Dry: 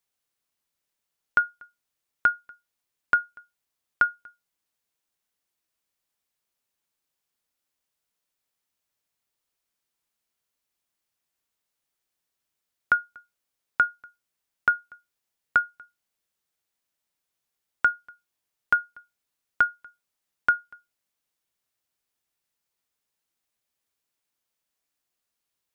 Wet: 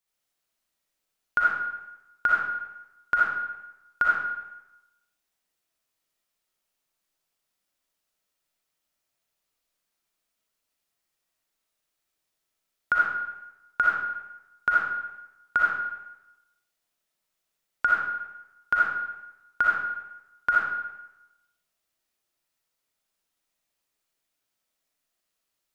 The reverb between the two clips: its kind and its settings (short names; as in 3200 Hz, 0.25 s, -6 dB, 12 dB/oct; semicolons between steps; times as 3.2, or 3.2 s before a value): digital reverb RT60 0.96 s, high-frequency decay 0.85×, pre-delay 20 ms, DRR -5.5 dB; gain -3.5 dB